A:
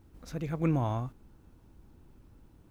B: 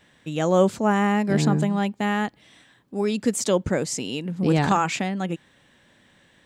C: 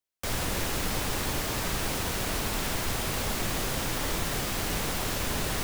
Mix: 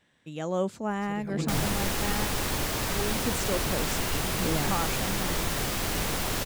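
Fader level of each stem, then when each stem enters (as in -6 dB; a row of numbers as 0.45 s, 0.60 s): -7.0 dB, -10.0 dB, +1.0 dB; 0.75 s, 0.00 s, 1.25 s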